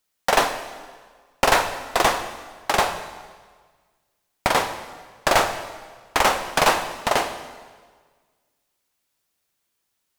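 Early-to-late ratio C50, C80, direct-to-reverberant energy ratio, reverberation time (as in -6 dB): 10.0 dB, 11.0 dB, 8.5 dB, 1.6 s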